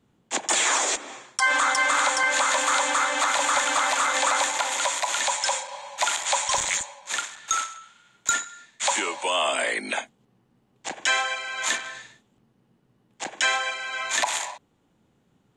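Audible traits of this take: noise floor -67 dBFS; spectral tilt +1.5 dB/octave

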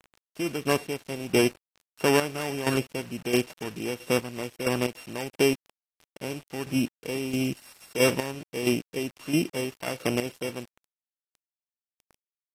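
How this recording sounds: a buzz of ramps at a fixed pitch in blocks of 16 samples; chopped level 1.5 Hz, depth 65%, duty 30%; a quantiser's noise floor 8-bit, dither none; AAC

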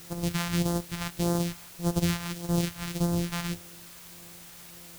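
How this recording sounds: a buzz of ramps at a fixed pitch in blocks of 256 samples; phasing stages 2, 1.7 Hz, lowest notch 370–2300 Hz; a quantiser's noise floor 8-bit, dither triangular

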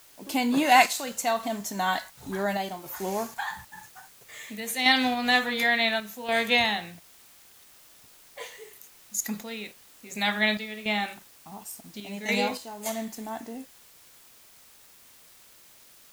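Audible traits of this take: random-step tremolo, depth 65%; a quantiser's noise floor 10-bit, dither triangular

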